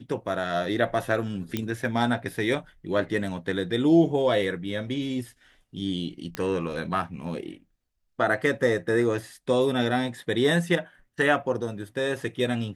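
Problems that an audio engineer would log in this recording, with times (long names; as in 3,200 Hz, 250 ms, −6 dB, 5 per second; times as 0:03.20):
0:01.57: click −13 dBFS
0:06.35: click −15 dBFS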